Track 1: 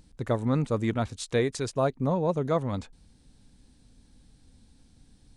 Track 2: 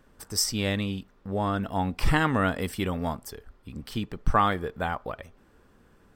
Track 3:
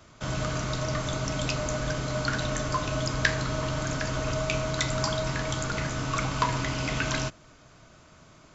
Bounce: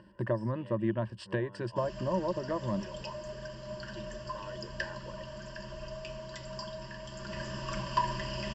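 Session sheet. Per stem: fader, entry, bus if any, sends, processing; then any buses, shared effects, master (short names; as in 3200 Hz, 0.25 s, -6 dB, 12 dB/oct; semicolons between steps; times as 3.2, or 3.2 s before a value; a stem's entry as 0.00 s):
+2.0 dB, 0.00 s, bus A, no send, dry
-16.0 dB, 0.00 s, bus A, no send, upward compressor, threshold -40 dBFS; comb 2.1 ms, depth 85%; compressor, threshold -27 dBFS, peak gain reduction 15 dB
7.06 s -18.5 dB -> 7.45 s -11 dB, 1.55 s, no bus, no send, comb 5.1 ms, depth 57%
bus A: 0.0 dB, BPF 130–2300 Hz; compressor 6:1, threshold -31 dBFS, peak gain reduction 12.5 dB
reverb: off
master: ripple EQ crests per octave 1.3, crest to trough 16 dB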